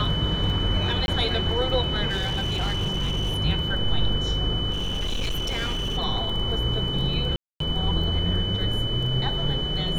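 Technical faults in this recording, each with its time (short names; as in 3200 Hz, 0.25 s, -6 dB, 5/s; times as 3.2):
crackle 13/s
tone 3000 Hz -28 dBFS
1.06–1.08 gap 21 ms
2.09–3.39 clipped -21 dBFS
4.72–5.98 clipped -23 dBFS
7.36–7.6 gap 0.243 s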